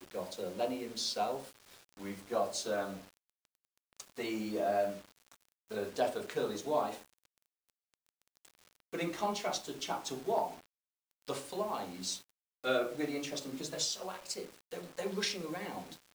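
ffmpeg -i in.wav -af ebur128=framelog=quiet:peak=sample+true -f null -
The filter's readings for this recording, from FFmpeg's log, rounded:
Integrated loudness:
  I:         -36.9 LUFS
  Threshold: -47.7 LUFS
Loudness range:
  LRA:         3.0 LU
  Threshold: -58.2 LUFS
  LRA low:   -39.8 LUFS
  LRA high:  -36.8 LUFS
Sample peak:
  Peak:      -17.9 dBFS
True peak:
  Peak:      -17.8 dBFS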